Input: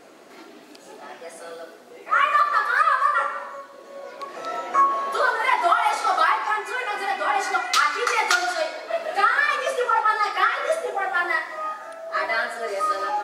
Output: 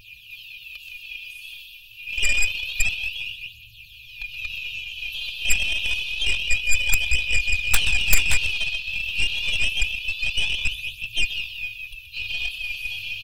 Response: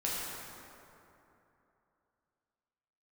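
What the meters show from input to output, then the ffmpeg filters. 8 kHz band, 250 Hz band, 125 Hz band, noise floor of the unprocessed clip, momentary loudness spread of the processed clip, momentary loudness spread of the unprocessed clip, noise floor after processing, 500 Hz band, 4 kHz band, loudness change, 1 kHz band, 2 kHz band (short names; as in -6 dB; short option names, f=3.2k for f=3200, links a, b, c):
+7.0 dB, -8.0 dB, n/a, -46 dBFS, 17 LU, 18 LU, -46 dBFS, -22.5 dB, +8.0 dB, -1.5 dB, -28.5 dB, +0.5 dB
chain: -filter_complex "[0:a]bandreject=f=154.7:t=h:w=4,bandreject=f=309.4:t=h:w=4,bandreject=f=464.1:t=h:w=4,bandreject=f=618.8:t=h:w=4,bandreject=f=773.5:t=h:w=4,bandreject=f=928.2:t=h:w=4,bandreject=f=1.0829k:t=h:w=4,bandreject=f=1.2376k:t=h:w=4,bandreject=f=1.3923k:t=h:w=4,bandreject=f=1.547k:t=h:w=4,bandreject=f=1.7017k:t=h:w=4,bandreject=f=1.8564k:t=h:w=4,bandreject=f=2.0111k:t=h:w=4,bandreject=f=2.1658k:t=h:w=4,bandreject=f=2.3205k:t=h:w=4,bandreject=f=2.4752k:t=h:w=4,bandreject=f=2.6299k:t=h:w=4,bandreject=f=2.7846k:t=h:w=4,bandreject=f=2.9393k:t=h:w=4,bandreject=f=3.094k:t=h:w=4,bandreject=f=3.2487k:t=h:w=4,bandreject=f=3.4034k:t=h:w=4,bandreject=f=3.5581k:t=h:w=4,bandreject=f=3.7128k:t=h:w=4,bandreject=f=3.8675k:t=h:w=4,bandreject=f=4.0222k:t=h:w=4,bandreject=f=4.1769k:t=h:w=4,bandreject=f=4.3316k:t=h:w=4,bandreject=f=4.4863k:t=h:w=4,bandreject=f=4.641k:t=h:w=4,bandreject=f=4.7957k:t=h:w=4,bandreject=f=4.9504k:t=h:w=4,bandreject=f=5.1051k:t=h:w=4,bandreject=f=5.2598k:t=h:w=4,bandreject=f=5.4145k:t=h:w=4,bandreject=f=5.5692k:t=h:w=4,bandreject=f=5.7239k:t=h:w=4,bandreject=f=5.8786k:t=h:w=4,afftfilt=real='re*(1-between(b*sr/4096,120,2400))':imag='im*(1-between(b*sr/4096,120,2400))':win_size=4096:overlap=0.75,aecho=1:1:5.7:0.71,asplit=2[a][b];[b]asplit=4[c][d][e][f];[c]adelay=127,afreqshift=47,volume=-7dB[g];[d]adelay=254,afreqshift=94,volume=-16.4dB[h];[e]adelay=381,afreqshift=141,volume=-25.7dB[i];[f]adelay=508,afreqshift=188,volume=-35.1dB[j];[g][h][i][j]amix=inputs=4:normalize=0[k];[a][k]amix=inputs=2:normalize=0,acrossover=split=3300[l][m];[m]acompressor=threshold=-43dB:ratio=4:attack=1:release=60[n];[l][n]amix=inputs=2:normalize=0,firequalizer=gain_entry='entry(180,0);entry(520,-4);entry(880,13);entry(2100,8);entry(4300,-10);entry(8000,-23);entry(13000,1)':delay=0.05:min_phase=1,acrossover=split=3100[o][p];[o]acontrast=43[q];[q][p]amix=inputs=2:normalize=0,aphaser=in_gain=1:out_gain=1:delay=3.7:decay=0.58:speed=0.27:type=triangular,aeval=exprs='0.355*(cos(1*acos(clip(val(0)/0.355,-1,1)))-cos(1*PI/2))+0.0355*(cos(2*acos(clip(val(0)/0.355,-1,1)))-cos(2*PI/2))+0.1*(cos(3*acos(clip(val(0)/0.355,-1,1)))-cos(3*PI/2))+0.112*(cos(7*acos(clip(val(0)/0.355,-1,1)))-cos(7*PI/2))+0.0316*(cos(8*acos(clip(val(0)/0.355,-1,1)))-cos(8*PI/2))':c=same,aeval=exprs='(mod(3.55*val(0)+1,2)-1)/3.55':c=same,asubboost=boost=7.5:cutoff=91,volume=2dB"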